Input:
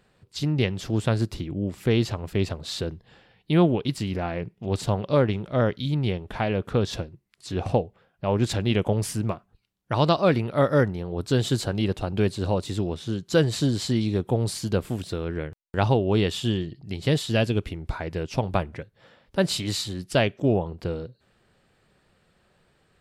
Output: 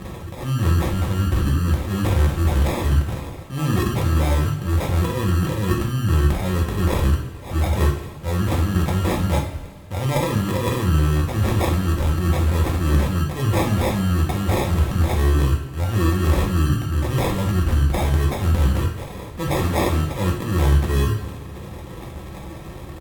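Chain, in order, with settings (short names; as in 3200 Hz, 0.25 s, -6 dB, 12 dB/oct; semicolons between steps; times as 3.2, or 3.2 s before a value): one diode to ground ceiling -21 dBFS; bell 120 Hz +7 dB 2.5 oct; in parallel at 0 dB: upward compressor, threshold -21 dBFS; on the sum: transient shaper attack -10 dB, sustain +11 dB; reverse; compressor 6:1, threshold -21 dBFS, peak gain reduction 15 dB; reverse; sample-and-hold 26×; bell 6200 Hz -4.5 dB 0.55 oct; pitch shift -2.5 st; two-slope reverb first 0.5 s, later 2.6 s, from -17 dB, DRR -1 dB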